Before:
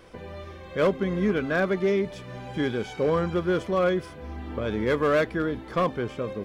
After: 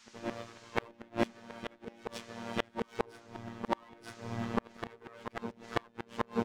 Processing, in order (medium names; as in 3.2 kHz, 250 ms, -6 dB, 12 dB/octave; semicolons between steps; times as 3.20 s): comb filter that takes the minimum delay 4.5 ms; high-pass 40 Hz 12 dB/octave; hum notches 60/120/180/240/300/360/420/480 Hz; expander -34 dBFS; robot voice 116 Hz; harmony voices -3 st -8 dB; band noise 870–6900 Hz -68 dBFS; inverted gate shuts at -18 dBFS, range -35 dB; reverse echo 936 ms -8.5 dB; trim +7.5 dB